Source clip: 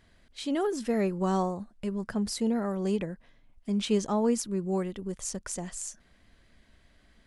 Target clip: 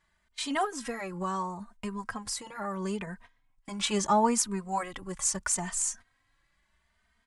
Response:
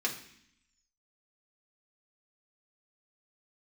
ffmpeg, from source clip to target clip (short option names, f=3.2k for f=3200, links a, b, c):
-filter_complex "[0:a]agate=range=-14dB:threshold=-50dB:ratio=16:detection=peak,equalizer=f=250:t=o:w=1:g=-4,equalizer=f=500:t=o:w=1:g=-6,equalizer=f=1k:t=o:w=1:g=11,equalizer=f=2k:t=o:w=1:g=5,equalizer=f=8k:t=o:w=1:g=8,asettb=1/sr,asplit=3[a][b][c];[a]atrim=end=0.644[d];[b]atrim=start=0.64:end=3.07,asetpts=PTS-STARTPTS,afade=t=in:d=0.004:c=qsin,afade=t=out:st=2.426:d=0.004:c=qsin,acompressor=threshold=-35dB:ratio=2.5[e];[c]atrim=start=3.066[f];[d][e]acrossfade=d=0.004:c1=hsin:c2=qsin[g];[g][f]acrossfade=d=0.004:c1=qsin:c2=hsin,asplit=2[h][i];[i]adelay=3,afreqshift=0.75[j];[h][j]amix=inputs=2:normalize=1,volume=4dB"